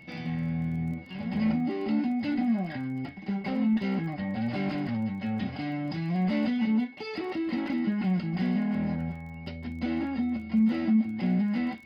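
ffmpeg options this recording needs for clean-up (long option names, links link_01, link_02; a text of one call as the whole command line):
ffmpeg -i in.wav -af "adeclick=threshold=4,bandreject=frequency=2200:width=30" out.wav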